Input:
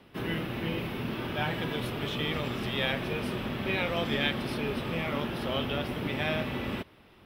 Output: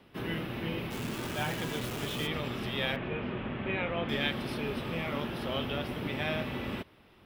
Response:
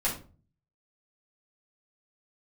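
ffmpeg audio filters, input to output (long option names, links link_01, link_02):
-filter_complex "[0:a]asplit=3[link_01][link_02][link_03];[link_01]afade=type=out:start_time=0.9:duration=0.02[link_04];[link_02]acrusher=bits=7:dc=4:mix=0:aa=0.000001,afade=type=in:start_time=0.9:duration=0.02,afade=type=out:start_time=2.26:duration=0.02[link_05];[link_03]afade=type=in:start_time=2.26:duration=0.02[link_06];[link_04][link_05][link_06]amix=inputs=3:normalize=0,asettb=1/sr,asplit=3[link_07][link_08][link_09];[link_07]atrim=end=2.964[link_10];[link_08]atrim=start=2.96:end=4.09,asetpts=PTS-STARTPTS,afade=type=in:duration=0.004:curve=qsin,afade=type=out:start_time=1.126:duration=0.004:curve=qsin,lowpass=frequency=2900:width=0.5412,lowpass=frequency=2900:width=1.3066[link_11];[link_09]atrim=start=4.086[link_12];[link_10][link_11]acrossfade=duration=0.004:curve1=hsin:curve2=qsin[link_13];[link_13][link_12]acrossfade=duration=0.004:curve1=qsin:curve2=hsin,volume=-2.5dB"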